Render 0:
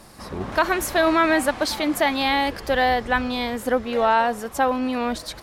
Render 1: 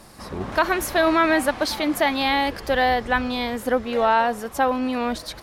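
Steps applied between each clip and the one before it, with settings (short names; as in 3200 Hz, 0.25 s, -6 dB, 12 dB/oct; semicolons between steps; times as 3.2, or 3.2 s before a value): dynamic EQ 7700 Hz, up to -4 dB, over -46 dBFS, Q 2.8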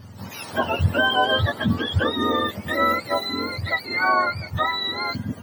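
spectrum mirrored in octaves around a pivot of 1000 Hz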